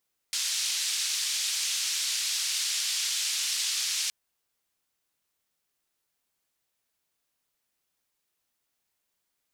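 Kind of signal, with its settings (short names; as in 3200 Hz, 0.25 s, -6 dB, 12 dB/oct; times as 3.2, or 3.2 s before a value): noise band 3500–6100 Hz, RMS -29.5 dBFS 3.77 s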